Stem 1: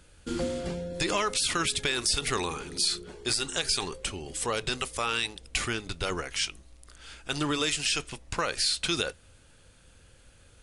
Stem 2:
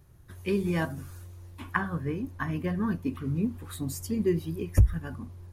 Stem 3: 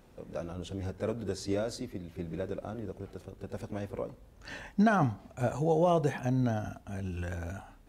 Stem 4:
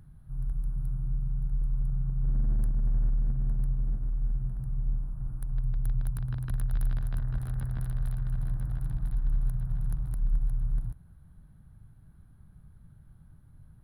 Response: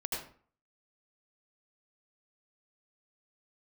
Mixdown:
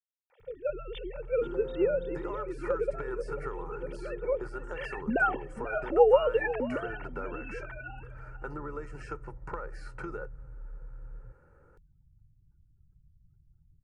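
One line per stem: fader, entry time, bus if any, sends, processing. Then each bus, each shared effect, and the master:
−1.0 dB, 1.15 s, no send, no echo send, sub-octave generator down 2 octaves, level +1 dB; elliptic band-pass filter 140–1,400 Hz, stop band 40 dB; downward compressor 6 to 1, threshold −37 dBFS, peak gain reduction 12 dB
muted
0.0 dB, 0.30 s, no send, echo send −14 dB, three sine waves on the formant tracks
−11.5 dB, 0.40 s, no send, no echo send, gate on every frequency bin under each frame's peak −30 dB strong; downward compressor 4 to 1, threshold −34 dBFS, peak gain reduction 11 dB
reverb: not used
echo: single-tap delay 489 ms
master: high-shelf EQ 3,200 Hz +11.5 dB; comb filter 2.2 ms, depth 62%

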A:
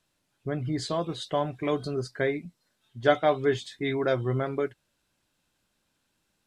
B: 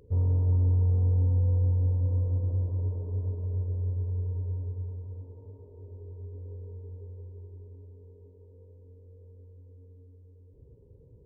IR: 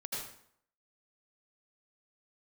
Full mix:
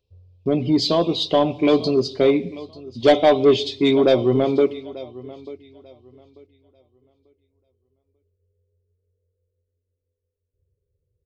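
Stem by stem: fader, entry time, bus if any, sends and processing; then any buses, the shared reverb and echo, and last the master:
+0.5 dB, 0.00 s, send −20.5 dB, echo send −19.5 dB, noise gate with hold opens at −45 dBFS; drawn EQ curve 110 Hz 0 dB, 240 Hz +14 dB, 520 Hz +11 dB, 1,100 Hz +7 dB, 1,600 Hz −16 dB, 2,400 Hz +13 dB, 5,000 Hz +14 dB, 9,000 Hz −8 dB
−18.5 dB, 0.00 s, no send, echo send −3.5 dB, phaser with its sweep stopped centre 910 Hz, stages 6; downward compressor, threshold −26 dBFS, peak gain reduction 4 dB; notch filter 450 Hz, Q 12; automatic ducking −10 dB, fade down 0.30 s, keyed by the first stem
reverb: on, RT60 0.65 s, pre-delay 73 ms
echo: repeating echo 891 ms, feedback 24%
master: soft clipping −6.5 dBFS, distortion −15 dB

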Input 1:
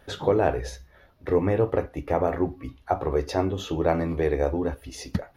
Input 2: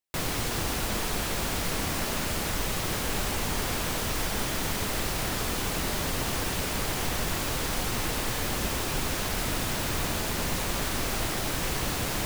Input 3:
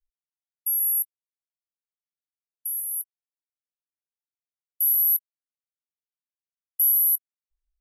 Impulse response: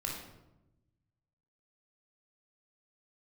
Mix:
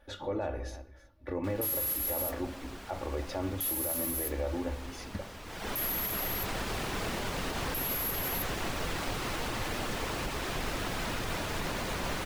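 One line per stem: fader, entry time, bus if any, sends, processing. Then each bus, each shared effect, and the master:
−9.5 dB, 0.00 s, bus A, send −18 dB, echo send −20.5 dB, low-shelf EQ 95 Hz +9 dB; comb filter 3.5 ms, depth 66%
0:05.43 −14 dB → 0:05.67 −2 dB, 1.30 s, bus A, no send, echo send −3.5 dB, high-shelf EQ 6,400 Hz −10 dB; reverb reduction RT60 0.53 s
−4.5 dB, 0.95 s, no bus, no send, echo send −3 dB, compressor whose output falls as the input rises −26 dBFS; noise that follows the level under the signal 11 dB
bus A: 0.0 dB, bass and treble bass −6 dB, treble −3 dB; brickwall limiter −25.5 dBFS, peak gain reduction 7.5 dB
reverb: on, RT60 0.95 s, pre-delay 19 ms
echo: single-tap delay 316 ms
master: brickwall limiter −23.5 dBFS, peak gain reduction 8 dB

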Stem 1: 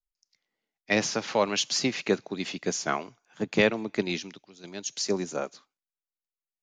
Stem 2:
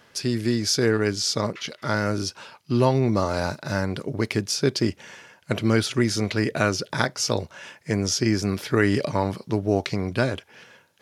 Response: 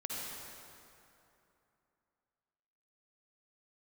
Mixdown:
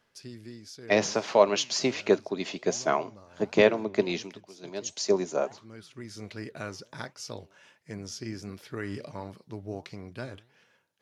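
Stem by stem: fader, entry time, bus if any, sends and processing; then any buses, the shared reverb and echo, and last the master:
+2.5 dB, 0.00 s, no send, thirty-one-band graphic EQ 400 Hz +7 dB, 630 Hz +10 dB, 1,000 Hz +6 dB
−11.0 dB, 0.00 s, no send, automatic ducking −14 dB, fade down 1.30 s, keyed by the first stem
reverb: not used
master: flanger 1.4 Hz, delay 2.8 ms, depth 7.8 ms, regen +89%

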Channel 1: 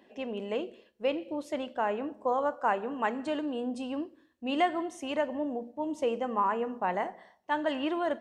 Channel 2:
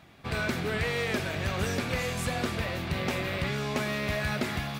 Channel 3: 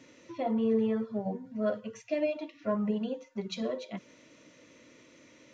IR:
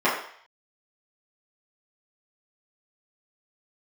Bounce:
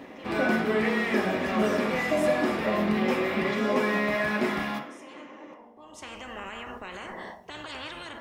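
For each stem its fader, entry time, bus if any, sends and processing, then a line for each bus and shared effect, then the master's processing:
−8.5 dB, 0.00 s, bus A, send −24 dB, tilt shelving filter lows +6 dB, about 710 Hz; every bin compressed towards the loudest bin 10 to 1; automatic ducking −21 dB, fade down 0.25 s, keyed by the third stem
−5.0 dB, 0.00 s, bus A, send −10 dB, no processing
+1.0 dB, 0.00 s, no bus, send −9.5 dB, parametric band 5,700 Hz −12 dB 2.1 octaves; downward compressor, threshold −37 dBFS, peak gain reduction 13.5 dB
bus A: 0.0 dB, speech leveller within 5 dB 0.5 s; brickwall limiter −29.5 dBFS, peak gain reduction 8 dB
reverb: on, RT60 0.60 s, pre-delay 3 ms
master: no processing

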